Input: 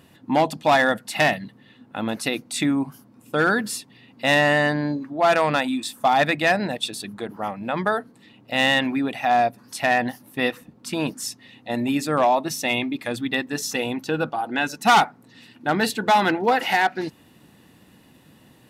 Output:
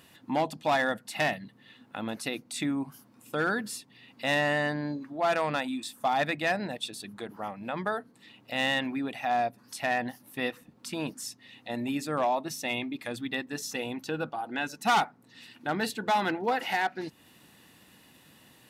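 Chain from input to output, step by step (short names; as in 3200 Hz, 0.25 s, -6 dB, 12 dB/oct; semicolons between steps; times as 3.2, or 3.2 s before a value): mismatched tape noise reduction encoder only; gain -8.5 dB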